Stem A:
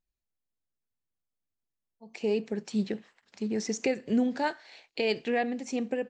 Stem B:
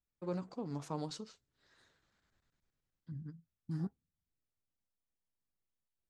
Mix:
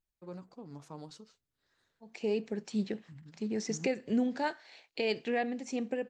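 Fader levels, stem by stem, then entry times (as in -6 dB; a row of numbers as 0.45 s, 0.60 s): -3.5 dB, -6.5 dB; 0.00 s, 0.00 s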